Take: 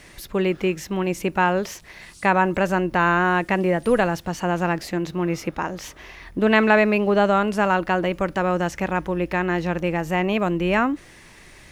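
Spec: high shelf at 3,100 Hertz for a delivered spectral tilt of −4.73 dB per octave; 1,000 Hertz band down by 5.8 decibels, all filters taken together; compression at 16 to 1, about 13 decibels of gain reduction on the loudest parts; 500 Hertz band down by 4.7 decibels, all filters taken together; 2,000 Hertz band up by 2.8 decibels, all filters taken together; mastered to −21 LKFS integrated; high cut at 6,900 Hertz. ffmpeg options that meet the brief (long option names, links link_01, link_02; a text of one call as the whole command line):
ffmpeg -i in.wav -af "lowpass=6900,equalizer=frequency=500:width_type=o:gain=-4.5,equalizer=frequency=1000:width_type=o:gain=-8,equalizer=frequency=2000:width_type=o:gain=9,highshelf=frequency=3100:gain=-6,acompressor=threshold=-25dB:ratio=16,volume=9.5dB" out.wav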